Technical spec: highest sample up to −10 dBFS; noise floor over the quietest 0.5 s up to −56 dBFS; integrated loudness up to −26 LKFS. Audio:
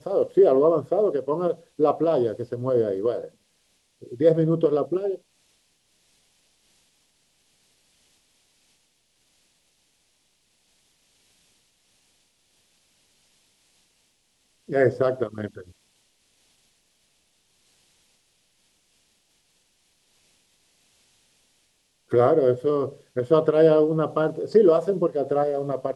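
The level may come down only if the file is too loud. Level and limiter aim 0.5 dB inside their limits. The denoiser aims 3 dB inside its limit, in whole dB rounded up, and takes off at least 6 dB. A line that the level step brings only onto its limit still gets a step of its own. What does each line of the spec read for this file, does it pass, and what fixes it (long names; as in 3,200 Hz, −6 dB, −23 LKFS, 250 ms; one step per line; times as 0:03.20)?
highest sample −6.0 dBFS: out of spec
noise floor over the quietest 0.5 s −67 dBFS: in spec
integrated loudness −22.0 LKFS: out of spec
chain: level −4.5 dB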